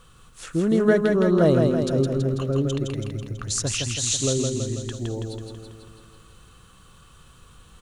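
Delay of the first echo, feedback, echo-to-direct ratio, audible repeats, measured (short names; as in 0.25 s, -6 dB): 0.164 s, 60%, -2.0 dB, 7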